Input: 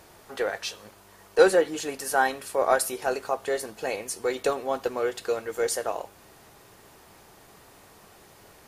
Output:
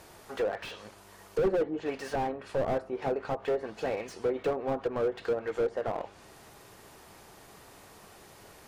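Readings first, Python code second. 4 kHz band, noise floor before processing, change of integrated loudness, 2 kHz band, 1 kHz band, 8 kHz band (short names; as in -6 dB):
-10.5 dB, -54 dBFS, -5.5 dB, -11.0 dB, -7.5 dB, under -15 dB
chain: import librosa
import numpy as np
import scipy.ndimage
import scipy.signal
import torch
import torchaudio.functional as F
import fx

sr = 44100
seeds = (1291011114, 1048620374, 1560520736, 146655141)

y = fx.env_lowpass_down(x, sr, base_hz=760.0, full_db=-22.5)
y = fx.dynamic_eq(y, sr, hz=2700.0, q=0.94, threshold_db=-46.0, ratio=4.0, max_db=3)
y = fx.slew_limit(y, sr, full_power_hz=30.0)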